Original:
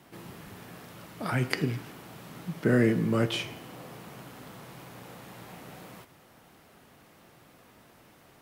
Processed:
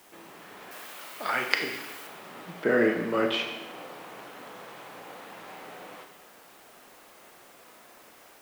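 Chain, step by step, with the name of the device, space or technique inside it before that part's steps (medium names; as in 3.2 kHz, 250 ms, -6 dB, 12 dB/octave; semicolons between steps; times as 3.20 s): dictaphone (band-pass 390–3500 Hz; level rider gain up to 4 dB; wow and flutter; white noise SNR 24 dB); 0.71–2.07 s: tilt EQ +3 dB/octave; Schroeder reverb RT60 1 s, combs from 30 ms, DRR 5.5 dB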